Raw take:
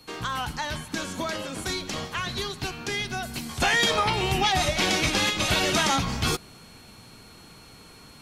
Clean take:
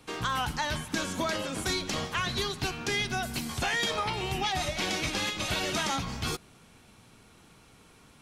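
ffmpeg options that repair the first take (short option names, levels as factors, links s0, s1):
-af "bandreject=f=4300:w=30,agate=range=0.0891:threshold=0.00891,asetnsamples=n=441:p=0,asendcmd='3.6 volume volume -7dB',volume=1"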